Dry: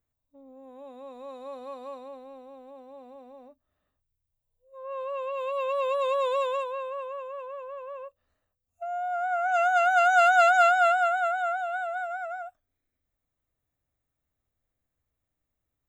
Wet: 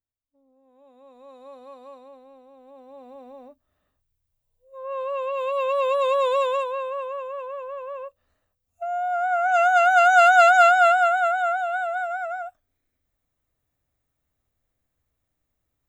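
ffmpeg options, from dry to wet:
-af "volume=1.78,afade=t=in:st=0.64:d=0.81:silence=0.354813,afade=t=in:st=2.54:d=0.74:silence=0.354813"

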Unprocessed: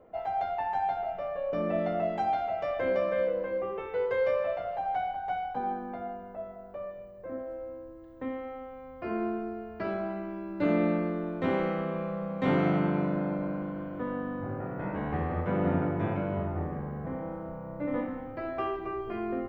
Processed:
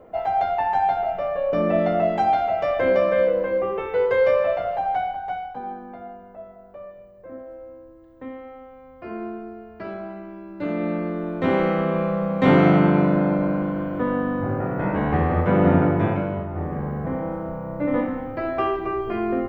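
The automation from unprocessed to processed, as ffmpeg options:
-af "volume=23.7,afade=t=out:st=4.67:d=0.91:silence=0.334965,afade=t=in:st=10.75:d=1.24:silence=0.281838,afade=t=out:st=15.91:d=0.56:silence=0.354813,afade=t=in:st=16.47:d=0.39:silence=0.421697"

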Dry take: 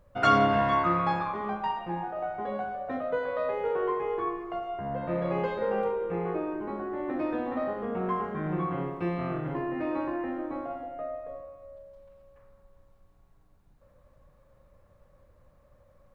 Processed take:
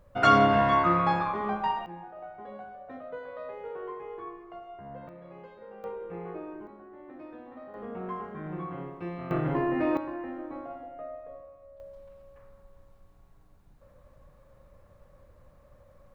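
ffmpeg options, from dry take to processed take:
-af "asetnsamples=n=441:p=0,asendcmd='1.86 volume volume -10dB;5.09 volume volume -18.5dB;5.84 volume volume -8dB;6.67 volume volume -15dB;7.74 volume volume -6.5dB;9.31 volume volume 4.5dB;9.97 volume volume -4.5dB;11.8 volume volume 3.5dB',volume=1.26"

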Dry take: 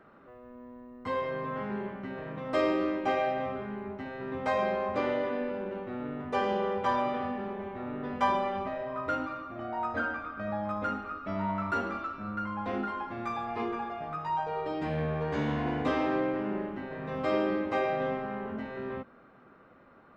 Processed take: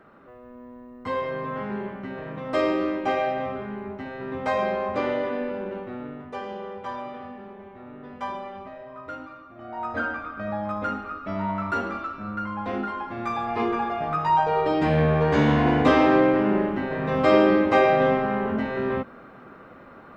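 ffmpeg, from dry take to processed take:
-af "volume=10.6,afade=t=out:st=5.74:d=0.65:silence=0.334965,afade=t=in:st=9.56:d=0.45:silence=0.334965,afade=t=in:st=13.05:d=1.19:silence=0.446684"

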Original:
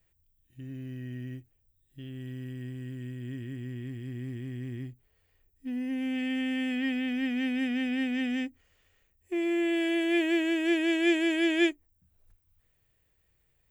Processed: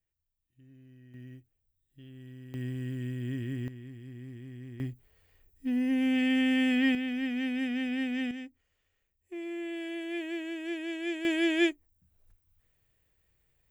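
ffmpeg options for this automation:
-af "asetnsamples=n=441:p=0,asendcmd='1.14 volume volume -8dB;2.54 volume volume 3.5dB;3.68 volume volume -7dB;4.8 volume volume 4.5dB;6.95 volume volume -2dB;8.31 volume volume -9.5dB;11.25 volume volume -1dB',volume=0.168"

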